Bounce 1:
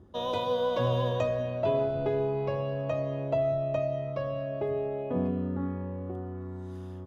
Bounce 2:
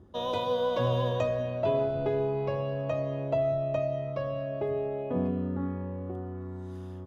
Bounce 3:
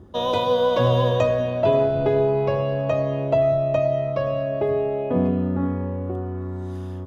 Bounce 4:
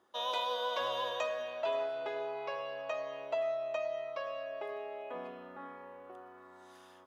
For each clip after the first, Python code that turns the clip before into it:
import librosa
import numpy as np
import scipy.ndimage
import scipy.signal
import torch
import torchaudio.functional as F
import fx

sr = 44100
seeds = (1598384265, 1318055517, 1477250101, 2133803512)

y1 = x
y2 = y1 + 10.0 ** (-18.0 / 20.0) * np.pad(y1, (int(524 * sr / 1000.0), 0))[:len(y1)]
y2 = F.gain(torch.from_numpy(y2), 8.5).numpy()
y3 = scipy.signal.sosfilt(scipy.signal.butter(2, 1000.0, 'highpass', fs=sr, output='sos'), y2)
y3 = F.gain(torch.from_numpy(y3), -6.5).numpy()